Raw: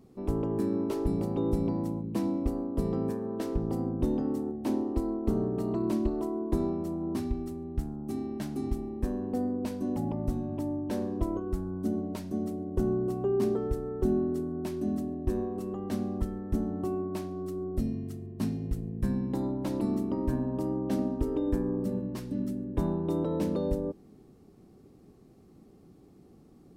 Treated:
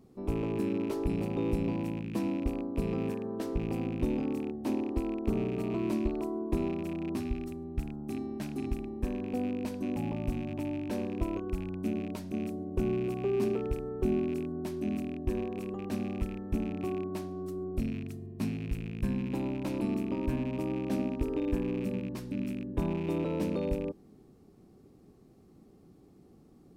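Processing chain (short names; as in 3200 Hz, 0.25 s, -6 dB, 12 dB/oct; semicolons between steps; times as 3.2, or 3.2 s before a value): rattling part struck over -34 dBFS, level -36 dBFS; gain -2 dB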